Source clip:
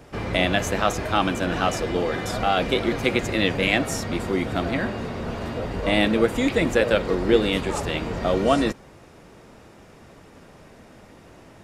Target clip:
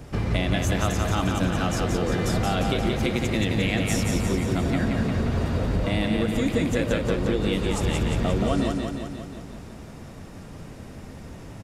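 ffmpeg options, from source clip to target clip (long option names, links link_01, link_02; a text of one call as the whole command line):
ffmpeg -i in.wav -filter_complex "[0:a]bass=frequency=250:gain=10,treble=frequency=4000:gain=4,acompressor=threshold=-22dB:ratio=6,asplit=2[link_01][link_02];[link_02]aecho=0:1:176|352|528|704|880|1056|1232|1408|1584:0.631|0.379|0.227|0.136|0.0818|0.0491|0.0294|0.0177|0.0106[link_03];[link_01][link_03]amix=inputs=2:normalize=0" out.wav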